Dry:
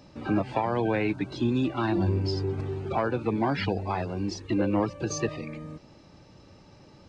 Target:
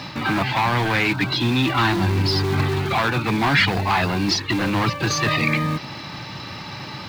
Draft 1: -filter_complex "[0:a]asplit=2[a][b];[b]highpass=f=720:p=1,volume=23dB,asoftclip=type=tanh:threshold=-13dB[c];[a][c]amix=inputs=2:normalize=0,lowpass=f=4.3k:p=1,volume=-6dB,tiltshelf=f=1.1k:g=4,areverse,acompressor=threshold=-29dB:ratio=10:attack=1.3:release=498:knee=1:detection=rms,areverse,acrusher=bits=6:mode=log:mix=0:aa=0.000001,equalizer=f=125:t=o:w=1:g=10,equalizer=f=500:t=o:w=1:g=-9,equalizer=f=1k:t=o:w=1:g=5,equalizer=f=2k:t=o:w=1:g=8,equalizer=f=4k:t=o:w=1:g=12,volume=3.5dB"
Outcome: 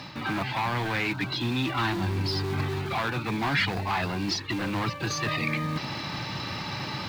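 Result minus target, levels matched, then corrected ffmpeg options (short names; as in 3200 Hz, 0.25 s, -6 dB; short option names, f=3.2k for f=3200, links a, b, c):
compressor: peak gain reduction +8 dB
-filter_complex "[0:a]asplit=2[a][b];[b]highpass=f=720:p=1,volume=23dB,asoftclip=type=tanh:threshold=-13dB[c];[a][c]amix=inputs=2:normalize=0,lowpass=f=4.3k:p=1,volume=-6dB,tiltshelf=f=1.1k:g=4,areverse,acompressor=threshold=-20dB:ratio=10:attack=1.3:release=498:knee=1:detection=rms,areverse,acrusher=bits=6:mode=log:mix=0:aa=0.000001,equalizer=f=125:t=o:w=1:g=10,equalizer=f=500:t=o:w=1:g=-9,equalizer=f=1k:t=o:w=1:g=5,equalizer=f=2k:t=o:w=1:g=8,equalizer=f=4k:t=o:w=1:g=12,volume=3.5dB"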